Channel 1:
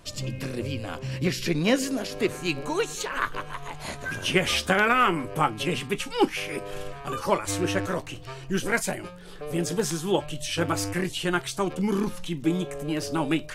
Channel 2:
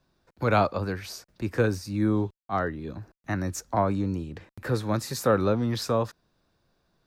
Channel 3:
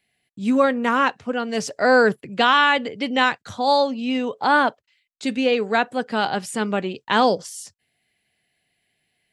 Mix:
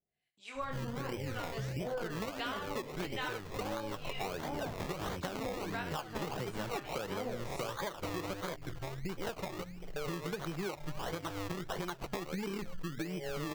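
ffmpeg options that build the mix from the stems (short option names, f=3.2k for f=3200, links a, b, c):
-filter_complex "[0:a]afwtdn=0.0158,adelay=550,volume=2.5dB[a];[1:a]dynaudnorm=f=300:g=11:m=11.5dB,adelay=1700,volume=-6.5dB[b];[2:a]acrossover=split=680[c][d];[c]aeval=exprs='val(0)*(1-1/2+1/2*cos(2*PI*1.1*n/s))':c=same[e];[d]aeval=exprs='val(0)*(1-1/2-1/2*cos(2*PI*1.1*n/s))':c=same[f];[e][f]amix=inputs=2:normalize=0,flanger=delay=20:depth=6.7:speed=0.69,volume=-6dB,asplit=2[g][h];[h]volume=-9dB[i];[a][b]amix=inputs=2:normalize=0,acrusher=samples=23:mix=1:aa=0.000001:lfo=1:lforange=13.8:lforate=1.5,acompressor=threshold=-26dB:ratio=6,volume=0dB[j];[i]aecho=0:1:72:1[k];[g][j][k]amix=inputs=3:normalize=0,equalizer=f=100:t=o:w=0.67:g=-5,equalizer=f=250:t=o:w=0.67:g=-6,equalizer=f=10k:t=o:w=0.67:g=-6,acompressor=threshold=-35dB:ratio=6"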